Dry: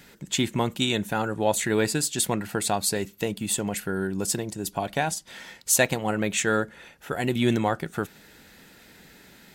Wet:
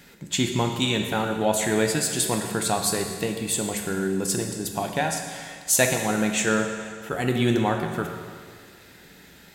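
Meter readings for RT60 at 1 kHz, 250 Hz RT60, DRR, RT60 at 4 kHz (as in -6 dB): 1.9 s, 1.9 s, 3.0 dB, 1.8 s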